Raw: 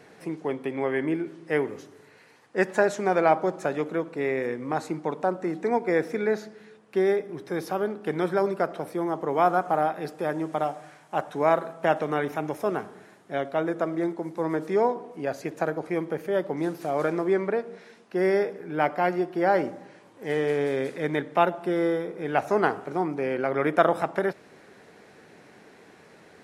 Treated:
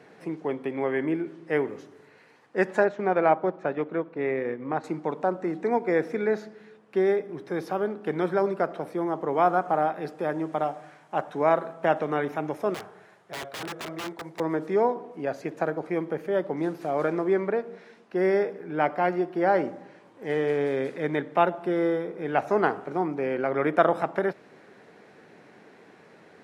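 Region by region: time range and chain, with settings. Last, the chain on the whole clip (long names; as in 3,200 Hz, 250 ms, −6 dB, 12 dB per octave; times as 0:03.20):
0:02.84–0:04.84: low-pass filter 3,300 Hz + transient designer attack −1 dB, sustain −5 dB
0:12.74–0:14.40: parametric band 260 Hz −15 dB 0.68 octaves + wrap-around overflow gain 27.5 dB
whole clip: high-pass filter 110 Hz; high-shelf EQ 5,200 Hz −10.5 dB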